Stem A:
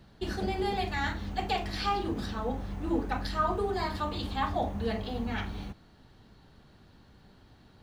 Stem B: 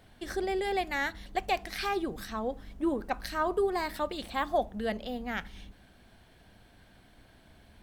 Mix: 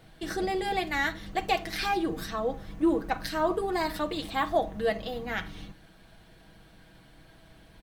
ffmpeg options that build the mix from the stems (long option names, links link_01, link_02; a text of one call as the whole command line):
ffmpeg -i stem1.wav -i stem2.wav -filter_complex "[0:a]bandreject=frequency=860:width=5,volume=-5.5dB[link_01];[1:a]volume=1.5dB[link_02];[link_01][link_02]amix=inputs=2:normalize=0,aecho=1:1:6.2:0.55" out.wav